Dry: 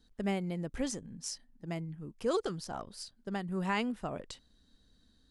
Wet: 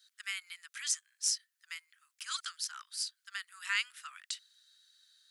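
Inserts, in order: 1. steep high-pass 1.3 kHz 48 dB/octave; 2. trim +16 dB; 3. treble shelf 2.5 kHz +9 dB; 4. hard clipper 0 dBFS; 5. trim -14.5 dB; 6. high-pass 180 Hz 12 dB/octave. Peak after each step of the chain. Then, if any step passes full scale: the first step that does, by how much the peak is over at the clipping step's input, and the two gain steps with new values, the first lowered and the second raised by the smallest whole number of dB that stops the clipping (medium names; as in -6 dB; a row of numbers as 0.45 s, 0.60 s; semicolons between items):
-20.5 dBFS, -4.5 dBFS, +3.0 dBFS, 0.0 dBFS, -14.5 dBFS, -14.5 dBFS; step 3, 3.0 dB; step 2 +13 dB, step 5 -11.5 dB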